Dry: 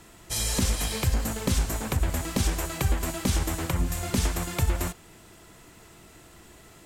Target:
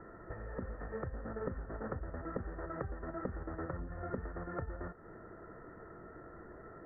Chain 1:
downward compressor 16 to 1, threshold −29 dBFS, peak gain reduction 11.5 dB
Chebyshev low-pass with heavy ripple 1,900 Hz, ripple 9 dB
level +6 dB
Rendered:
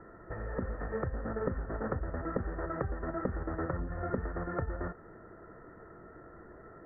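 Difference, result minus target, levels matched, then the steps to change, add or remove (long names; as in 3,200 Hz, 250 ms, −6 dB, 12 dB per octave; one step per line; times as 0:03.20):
downward compressor: peak gain reduction −6 dB
change: downward compressor 16 to 1, threshold −35.5 dBFS, peak gain reduction 17.5 dB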